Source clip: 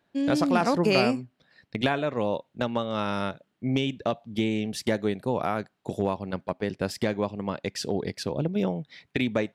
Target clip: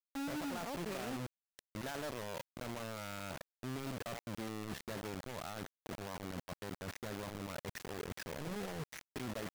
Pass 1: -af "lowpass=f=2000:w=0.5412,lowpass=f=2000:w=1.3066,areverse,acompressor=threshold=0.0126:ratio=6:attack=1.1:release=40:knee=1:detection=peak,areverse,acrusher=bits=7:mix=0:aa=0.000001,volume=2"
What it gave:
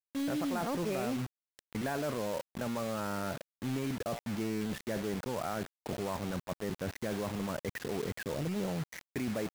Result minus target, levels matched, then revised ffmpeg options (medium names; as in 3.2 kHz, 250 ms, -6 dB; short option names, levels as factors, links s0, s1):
compression: peak gain reduction -9 dB
-af "lowpass=f=2000:w=0.5412,lowpass=f=2000:w=1.3066,areverse,acompressor=threshold=0.00376:ratio=6:attack=1.1:release=40:knee=1:detection=peak,areverse,acrusher=bits=7:mix=0:aa=0.000001,volume=2"